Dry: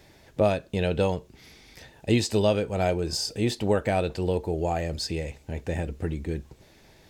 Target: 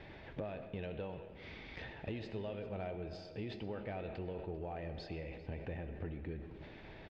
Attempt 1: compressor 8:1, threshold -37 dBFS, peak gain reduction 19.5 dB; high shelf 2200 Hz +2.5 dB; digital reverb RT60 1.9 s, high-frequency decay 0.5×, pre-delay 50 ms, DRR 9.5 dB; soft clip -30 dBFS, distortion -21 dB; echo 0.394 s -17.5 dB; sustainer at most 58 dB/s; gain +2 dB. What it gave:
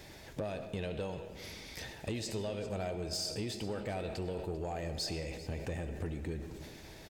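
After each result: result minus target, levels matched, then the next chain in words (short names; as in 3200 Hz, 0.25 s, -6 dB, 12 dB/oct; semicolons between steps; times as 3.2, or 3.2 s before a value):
4000 Hz band +8.0 dB; compressor: peak gain reduction -5.5 dB
compressor 8:1, threshold -37 dBFS, peak gain reduction 19.5 dB; LPF 3100 Hz 24 dB/oct; high shelf 2200 Hz +2.5 dB; digital reverb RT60 1.9 s, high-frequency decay 0.5×, pre-delay 50 ms, DRR 9.5 dB; soft clip -30 dBFS, distortion -21 dB; echo 0.394 s -17.5 dB; sustainer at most 58 dB/s; gain +2 dB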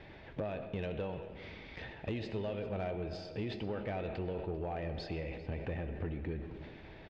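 compressor: peak gain reduction -5.5 dB
compressor 8:1, threshold -43 dBFS, peak gain reduction 24.5 dB; LPF 3100 Hz 24 dB/oct; high shelf 2200 Hz +2.5 dB; digital reverb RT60 1.9 s, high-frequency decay 0.5×, pre-delay 50 ms, DRR 9.5 dB; soft clip -30 dBFS, distortion -29 dB; echo 0.394 s -17.5 dB; sustainer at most 58 dB/s; gain +2 dB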